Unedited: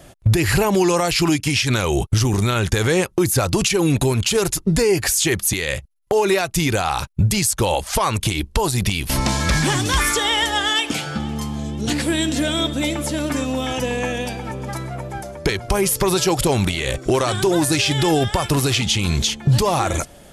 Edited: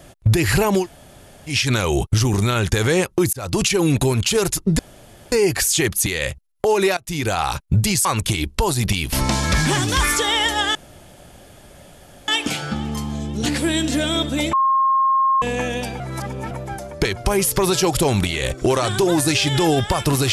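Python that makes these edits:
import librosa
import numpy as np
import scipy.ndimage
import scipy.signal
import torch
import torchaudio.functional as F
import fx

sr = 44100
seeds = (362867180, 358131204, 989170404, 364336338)

y = fx.edit(x, sr, fx.room_tone_fill(start_s=0.82, length_s=0.69, crossfade_s=0.1),
    fx.fade_in_span(start_s=3.33, length_s=0.27),
    fx.insert_room_tone(at_s=4.79, length_s=0.53),
    fx.fade_in_from(start_s=6.44, length_s=0.39, floor_db=-21.0),
    fx.cut(start_s=7.52, length_s=0.5),
    fx.insert_room_tone(at_s=10.72, length_s=1.53),
    fx.bleep(start_s=12.97, length_s=0.89, hz=1070.0, db=-13.5),
    fx.reverse_span(start_s=14.44, length_s=0.51), tone=tone)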